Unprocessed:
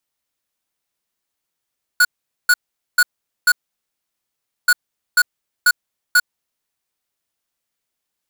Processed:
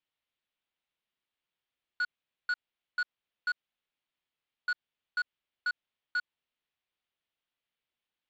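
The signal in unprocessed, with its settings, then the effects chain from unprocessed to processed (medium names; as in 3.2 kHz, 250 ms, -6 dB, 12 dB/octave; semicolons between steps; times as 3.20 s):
beep pattern square 1.46 kHz, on 0.05 s, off 0.44 s, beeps 4, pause 1.16 s, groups 2, -11.5 dBFS
peak limiter -21 dBFS; four-pole ladder low-pass 3.9 kHz, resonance 40%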